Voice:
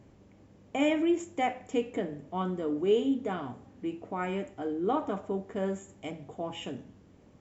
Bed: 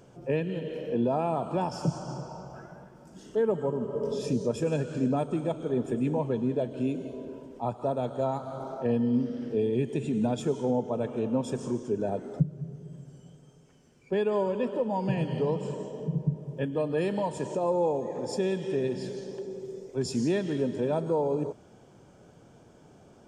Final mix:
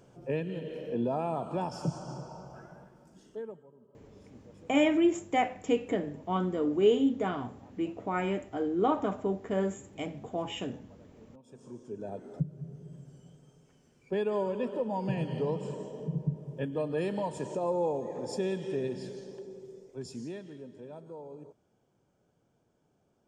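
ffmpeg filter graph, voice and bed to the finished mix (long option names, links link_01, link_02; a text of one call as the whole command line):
ffmpeg -i stem1.wav -i stem2.wav -filter_complex "[0:a]adelay=3950,volume=2dB[link_01];[1:a]volume=20.5dB,afade=type=out:start_time=2.81:duration=0.83:silence=0.0630957,afade=type=in:start_time=11.42:duration=1.4:silence=0.0595662,afade=type=out:start_time=18.63:duration=1.98:silence=0.188365[link_02];[link_01][link_02]amix=inputs=2:normalize=0" out.wav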